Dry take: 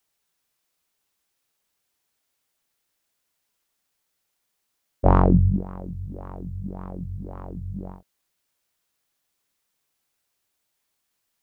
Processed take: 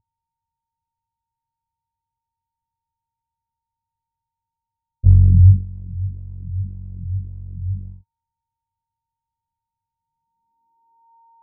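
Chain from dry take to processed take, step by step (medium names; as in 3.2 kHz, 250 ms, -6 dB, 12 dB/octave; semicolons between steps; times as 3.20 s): whistle 920 Hz -46 dBFS; dynamic bell 100 Hz, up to +6 dB, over -38 dBFS, Q 6.9; low-pass sweep 100 Hz -> 540 Hz, 9.93–11.14 s; trim +1.5 dB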